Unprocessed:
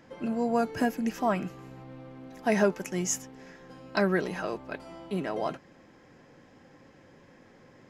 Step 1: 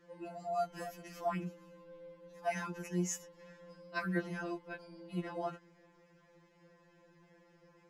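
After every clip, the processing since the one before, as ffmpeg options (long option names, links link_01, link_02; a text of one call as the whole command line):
ffmpeg -i in.wav -af "afftfilt=real='re*2.83*eq(mod(b,8),0)':imag='im*2.83*eq(mod(b,8),0)':win_size=2048:overlap=0.75,volume=-7dB" out.wav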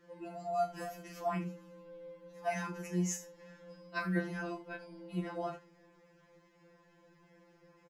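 ffmpeg -i in.wav -af "aecho=1:1:33|77:0.398|0.188" out.wav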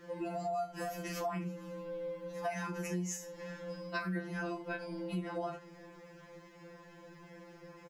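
ffmpeg -i in.wav -af "acompressor=threshold=-45dB:ratio=6,volume=10dB" out.wav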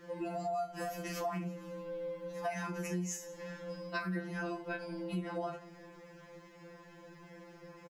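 ffmpeg -i in.wav -af "aecho=1:1:180:0.0841" out.wav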